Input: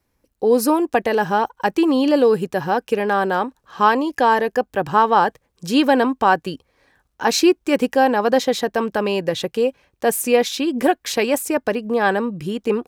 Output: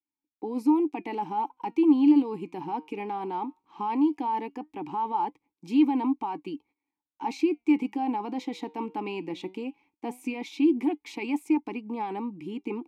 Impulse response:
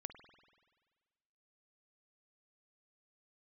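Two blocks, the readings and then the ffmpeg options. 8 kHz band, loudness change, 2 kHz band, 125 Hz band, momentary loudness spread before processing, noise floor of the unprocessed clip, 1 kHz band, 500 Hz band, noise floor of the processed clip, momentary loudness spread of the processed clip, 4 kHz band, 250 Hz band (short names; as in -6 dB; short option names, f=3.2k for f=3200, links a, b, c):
under -25 dB, -9.5 dB, -19.5 dB, -14.5 dB, 7 LU, -70 dBFS, -12.0 dB, -17.0 dB, under -85 dBFS, 13 LU, -19.0 dB, -4.0 dB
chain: -filter_complex "[0:a]agate=range=-19dB:threshold=-49dB:ratio=16:detection=peak,highshelf=f=5.9k:g=10.5,alimiter=limit=-11.5dB:level=0:latency=1:release=11,flanger=delay=0.8:depth=5.9:regen=88:speed=0.17:shape=triangular,asplit=3[a][b][c];[a]bandpass=f=300:t=q:w=8,volume=0dB[d];[b]bandpass=f=870:t=q:w=8,volume=-6dB[e];[c]bandpass=f=2.24k:t=q:w=8,volume=-9dB[f];[d][e][f]amix=inputs=3:normalize=0,volume=7.5dB"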